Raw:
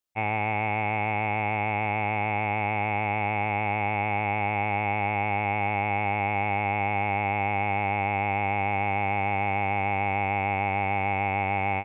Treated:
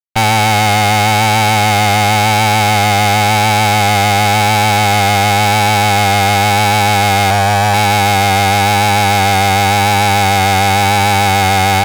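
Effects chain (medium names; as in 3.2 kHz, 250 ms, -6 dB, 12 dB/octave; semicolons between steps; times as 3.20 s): 7.30–7.74 s: static phaser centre 1.4 kHz, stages 8; fuzz box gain 49 dB, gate -51 dBFS; vibrato 0.93 Hz 34 cents; trim +3 dB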